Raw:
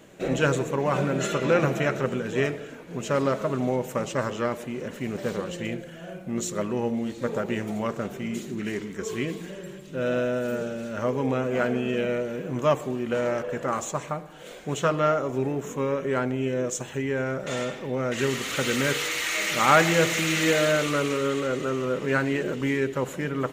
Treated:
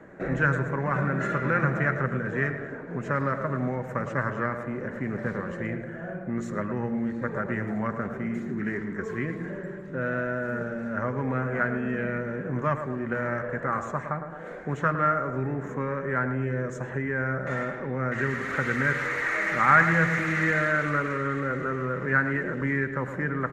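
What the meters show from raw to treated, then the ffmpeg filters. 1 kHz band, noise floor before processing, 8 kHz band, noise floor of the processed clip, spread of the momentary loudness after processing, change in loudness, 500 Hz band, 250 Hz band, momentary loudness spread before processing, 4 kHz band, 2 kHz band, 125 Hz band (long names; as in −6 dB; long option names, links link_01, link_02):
+1.0 dB, −42 dBFS, below −15 dB, −38 dBFS, 9 LU, −1.5 dB, −5.5 dB, −1.5 dB, 10 LU, below −15 dB, +3.0 dB, +2.0 dB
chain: -filter_complex "[0:a]aemphasis=mode=reproduction:type=75kf,asplit=2[link_01][link_02];[link_02]adelay=108,lowpass=frequency=2000:poles=1,volume=-10dB,asplit=2[link_03][link_04];[link_04]adelay=108,lowpass=frequency=2000:poles=1,volume=0.53,asplit=2[link_05][link_06];[link_06]adelay=108,lowpass=frequency=2000:poles=1,volume=0.53,asplit=2[link_07][link_08];[link_08]adelay=108,lowpass=frequency=2000:poles=1,volume=0.53,asplit=2[link_09][link_10];[link_10]adelay=108,lowpass=frequency=2000:poles=1,volume=0.53,asplit=2[link_11][link_12];[link_12]adelay=108,lowpass=frequency=2000:poles=1,volume=0.53[link_13];[link_01][link_03][link_05][link_07][link_09][link_11][link_13]amix=inputs=7:normalize=0,acrossover=split=200|1200[link_14][link_15][link_16];[link_15]acompressor=threshold=-36dB:ratio=4[link_17];[link_14][link_17][link_16]amix=inputs=3:normalize=0,highshelf=frequency=2300:width_type=q:width=3:gain=-9,volume=2.5dB"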